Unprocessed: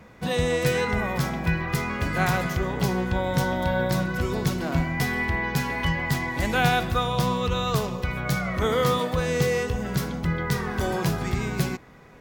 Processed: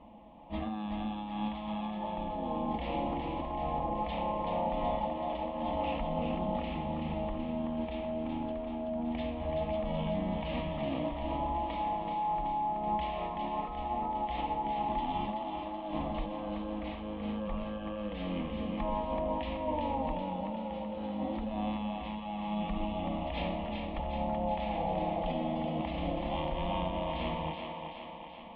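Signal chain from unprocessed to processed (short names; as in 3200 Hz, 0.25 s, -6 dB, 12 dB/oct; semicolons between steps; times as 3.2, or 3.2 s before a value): elliptic low-pass 7900 Hz, stop band 70 dB; low shelf 270 Hz -11.5 dB; negative-ratio compressor -33 dBFS, ratio -1; fixed phaser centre 960 Hz, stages 6; thinning echo 0.162 s, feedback 64%, high-pass 630 Hz, level -4.5 dB; speed mistake 78 rpm record played at 33 rpm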